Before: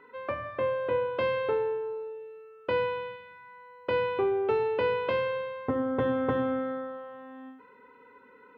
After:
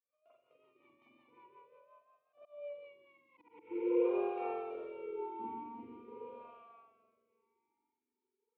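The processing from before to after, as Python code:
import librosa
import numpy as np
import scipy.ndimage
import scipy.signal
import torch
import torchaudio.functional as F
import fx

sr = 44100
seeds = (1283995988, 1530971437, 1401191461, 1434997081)

y = fx.doppler_pass(x, sr, speed_mps=46, closest_m=6.2, pass_at_s=3.43)
y = fx.rider(y, sr, range_db=3, speed_s=0.5)
y = fx.leveller(y, sr, passes=2)
y = fx.rev_spring(y, sr, rt60_s=2.3, pass_ms=(42, 46), chirp_ms=80, drr_db=-9.0)
y = fx.auto_swell(y, sr, attack_ms=260.0)
y = fx.vibrato(y, sr, rate_hz=0.52, depth_cents=58.0)
y = fx.rotary_switch(y, sr, hz=5.5, then_hz=0.9, switch_at_s=2.72)
y = fx.auto_swell(y, sr, attack_ms=423.0)
y = fx.vowel_sweep(y, sr, vowels='a-u', hz=0.44)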